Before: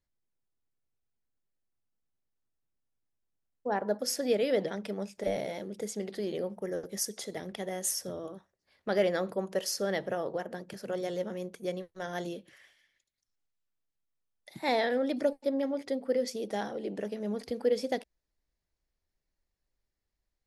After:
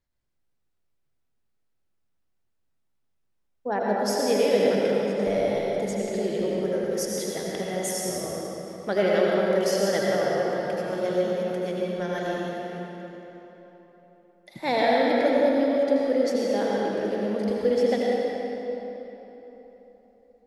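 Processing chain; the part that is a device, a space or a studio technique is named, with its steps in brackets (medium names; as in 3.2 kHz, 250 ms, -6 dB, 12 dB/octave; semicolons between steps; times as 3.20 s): swimming-pool hall (reverberation RT60 3.9 s, pre-delay 75 ms, DRR -4.5 dB; treble shelf 5.7 kHz -6 dB); trim +3 dB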